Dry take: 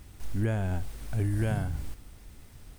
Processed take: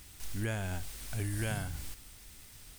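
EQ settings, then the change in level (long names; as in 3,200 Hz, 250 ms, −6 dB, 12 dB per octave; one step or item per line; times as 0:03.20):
tilt shelving filter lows −7.5 dB, about 1,500 Hz
0.0 dB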